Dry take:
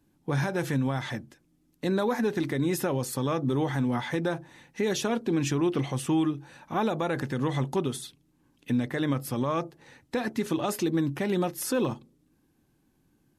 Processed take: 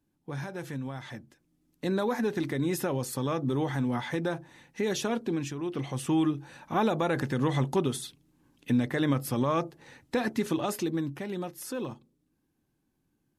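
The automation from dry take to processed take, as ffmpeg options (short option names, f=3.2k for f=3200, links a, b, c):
-af "volume=9.5dB,afade=t=in:st=1.03:d=0.86:silence=0.446684,afade=t=out:st=5.24:d=0.31:silence=0.375837,afade=t=in:st=5.55:d=0.81:silence=0.266073,afade=t=out:st=10.25:d=1.02:silence=0.354813"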